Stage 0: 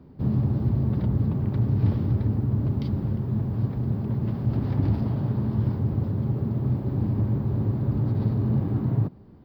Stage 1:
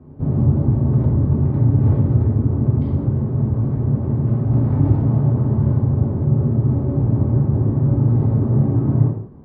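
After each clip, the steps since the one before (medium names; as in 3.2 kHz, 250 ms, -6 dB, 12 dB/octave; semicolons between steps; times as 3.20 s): Bessel low-pass 1.1 kHz, order 2; gated-style reverb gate 240 ms falling, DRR -4 dB; trim +2.5 dB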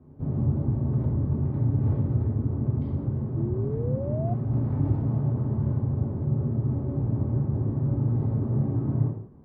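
painted sound rise, 3.36–4.34 s, 320–720 Hz -25 dBFS; trim -9 dB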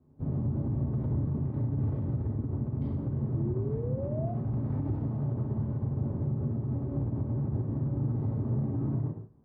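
peak limiter -22.5 dBFS, peak gain reduction 10 dB; on a send: flutter echo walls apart 11.1 m, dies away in 0.35 s; on the sum: upward expansion 1.5:1, over -48 dBFS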